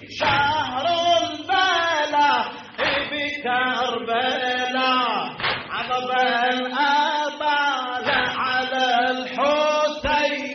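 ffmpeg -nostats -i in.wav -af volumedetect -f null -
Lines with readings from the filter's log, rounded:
mean_volume: -21.7 dB
max_volume: -8.0 dB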